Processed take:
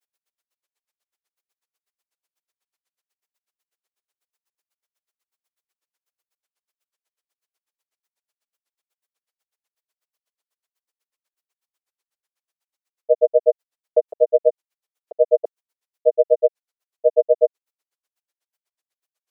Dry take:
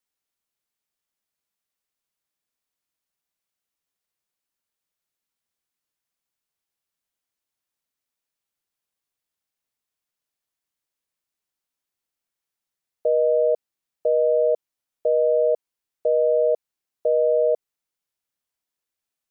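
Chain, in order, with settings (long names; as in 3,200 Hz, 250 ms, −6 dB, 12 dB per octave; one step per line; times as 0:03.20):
high-pass filter 370 Hz 24 dB per octave
granular cloud 64 ms, grains 8.1 per second, pitch spread up and down by 0 semitones
level +8.5 dB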